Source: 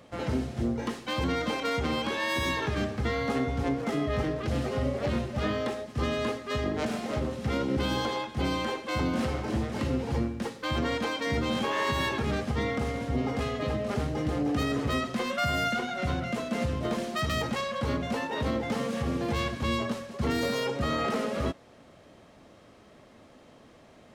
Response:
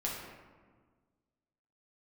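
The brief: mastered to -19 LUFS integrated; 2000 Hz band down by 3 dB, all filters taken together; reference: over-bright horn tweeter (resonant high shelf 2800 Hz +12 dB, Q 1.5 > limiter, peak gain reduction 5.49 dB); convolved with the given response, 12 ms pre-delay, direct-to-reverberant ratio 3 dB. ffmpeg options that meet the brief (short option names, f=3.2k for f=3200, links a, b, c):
-filter_complex "[0:a]equalizer=f=2k:t=o:g=-3.5,asplit=2[a][b];[1:a]atrim=start_sample=2205,adelay=12[c];[b][c]afir=irnorm=-1:irlink=0,volume=-6.5dB[d];[a][d]amix=inputs=2:normalize=0,highshelf=f=2.8k:t=q:w=1.5:g=12,volume=8dB,alimiter=limit=-9dB:level=0:latency=1"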